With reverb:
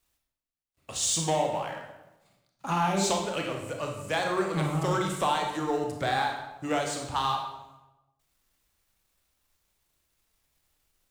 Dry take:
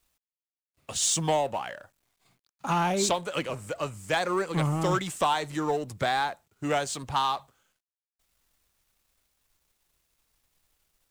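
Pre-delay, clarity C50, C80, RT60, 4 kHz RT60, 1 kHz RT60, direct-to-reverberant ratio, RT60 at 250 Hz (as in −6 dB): 26 ms, 4.0 dB, 6.5 dB, 1.0 s, 0.75 s, 0.95 s, 1.5 dB, 1.1 s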